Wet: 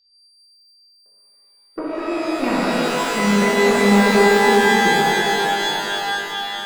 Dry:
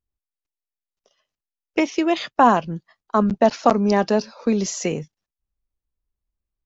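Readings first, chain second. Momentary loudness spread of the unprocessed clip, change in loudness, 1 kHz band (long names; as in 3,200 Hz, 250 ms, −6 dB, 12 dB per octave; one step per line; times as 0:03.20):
11 LU, +3.5 dB, +3.0 dB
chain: running median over 41 samples
auto-filter low-pass saw down 4.1 Hz 300–2,600 Hz
notch filter 680 Hz, Q 12
steady tone 4,700 Hz −51 dBFS
reverb with rising layers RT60 3.8 s, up +12 semitones, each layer −2 dB, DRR −7.5 dB
level −8 dB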